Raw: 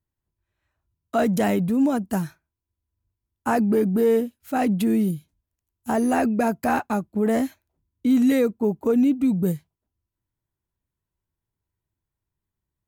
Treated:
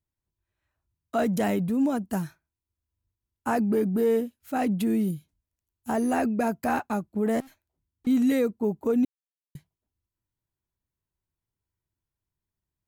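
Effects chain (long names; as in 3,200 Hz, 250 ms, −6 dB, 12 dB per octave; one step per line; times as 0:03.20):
0:07.40–0:08.07: tube saturation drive 44 dB, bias 0.55
0:09.05–0:09.55: silence
level −4 dB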